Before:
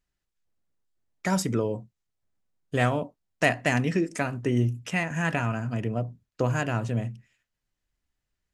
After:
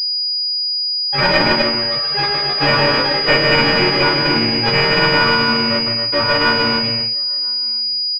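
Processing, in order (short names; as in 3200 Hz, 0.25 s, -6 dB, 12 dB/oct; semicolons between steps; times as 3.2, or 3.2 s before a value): frequency quantiser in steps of 4 st; comb 3.6 ms, depth 89%; in parallel at -9 dB: fuzz box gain 36 dB, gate -43 dBFS; on the sum: low shelf 470 Hz -4.5 dB; outdoor echo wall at 180 m, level -26 dB; echoes that change speed 0.306 s, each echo +6 st, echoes 3, each echo -6 dB; loudspeakers at several distances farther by 33 m -11 dB, 55 m -5 dB, 95 m -6 dB; speed mistake 24 fps film run at 25 fps; careless resampling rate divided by 2×, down none, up zero stuff; pulse-width modulation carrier 4900 Hz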